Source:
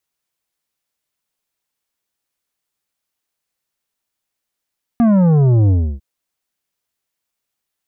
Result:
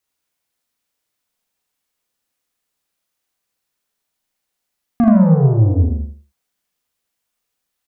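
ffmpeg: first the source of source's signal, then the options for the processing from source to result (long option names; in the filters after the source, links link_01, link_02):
-f lavfi -i "aevalsrc='0.316*clip((1-t)/0.31,0,1)*tanh(2.99*sin(2*PI*240*1/log(65/240)*(exp(log(65/240)*t/1)-1)))/tanh(2.99)':duration=1:sample_rate=44100"
-filter_complex "[0:a]asplit=2[link_01][link_02];[link_02]adelay=83,lowpass=frequency=2000:poles=1,volume=-7dB,asplit=2[link_03][link_04];[link_04]adelay=83,lowpass=frequency=2000:poles=1,volume=0.24,asplit=2[link_05][link_06];[link_06]adelay=83,lowpass=frequency=2000:poles=1,volume=0.24[link_07];[link_03][link_05][link_07]amix=inputs=3:normalize=0[link_08];[link_01][link_08]amix=inputs=2:normalize=0,alimiter=limit=-9.5dB:level=0:latency=1:release=243,asplit=2[link_09][link_10];[link_10]aecho=0:1:37|79:0.562|0.708[link_11];[link_09][link_11]amix=inputs=2:normalize=0"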